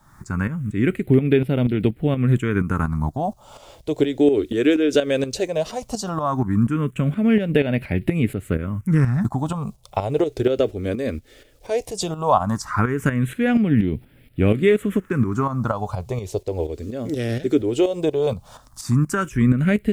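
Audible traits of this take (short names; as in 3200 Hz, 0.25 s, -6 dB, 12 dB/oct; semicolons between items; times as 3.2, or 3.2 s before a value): a quantiser's noise floor 10-bit, dither none; phasing stages 4, 0.16 Hz, lowest notch 160–1100 Hz; tremolo saw up 4.2 Hz, depth 65%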